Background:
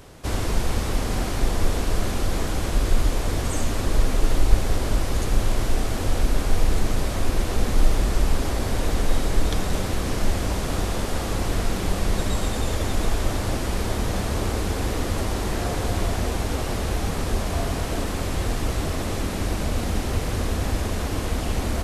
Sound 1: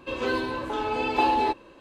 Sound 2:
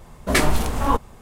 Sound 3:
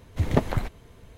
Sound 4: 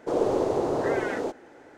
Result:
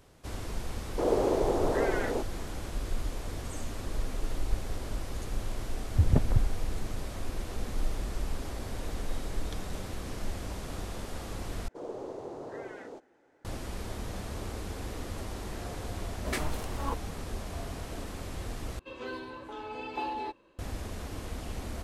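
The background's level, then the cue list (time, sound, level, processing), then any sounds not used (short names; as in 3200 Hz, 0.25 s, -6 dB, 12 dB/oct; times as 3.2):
background -13 dB
0.91 add 4 -2.5 dB
5.79 add 3 -12.5 dB + RIAA curve playback
11.68 replace with 4 -15.5 dB
15.98 add 2 -15 dB
18.79 replace with 1 -12.5 dB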